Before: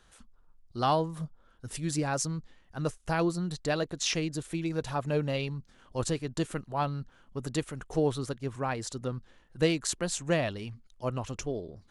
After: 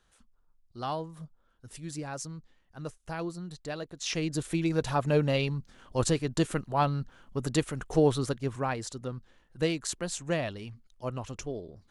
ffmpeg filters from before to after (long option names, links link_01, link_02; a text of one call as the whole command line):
ffmpeg -i in.wav -af "volume=4dB,afade=type=in:start_time=4:duration=0.41:silence=0.266073,afade=type=out:start_time=8.3:duration=0.67:silence=0.473151" out.wav